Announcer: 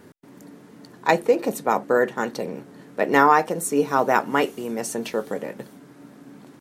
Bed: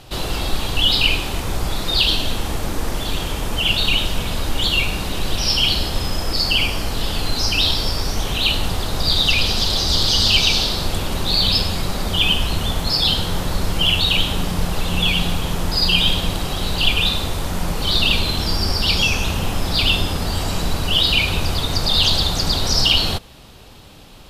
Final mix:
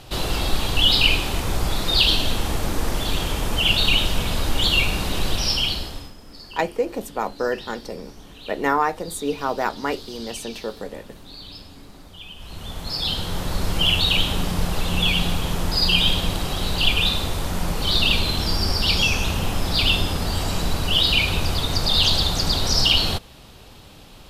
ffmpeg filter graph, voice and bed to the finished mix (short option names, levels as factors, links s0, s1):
-filter_complex "[0:a]adelay=5500,volume=0.596[s0];[1:a]volume=10.6,afade=t=out:st=5.22:d=0.92:silence=0.0749894,afade=t=in:st=12.35:d=1.42:silence=0.0891251[s1];[s0][s1]amix=inputs=2:normalize=0"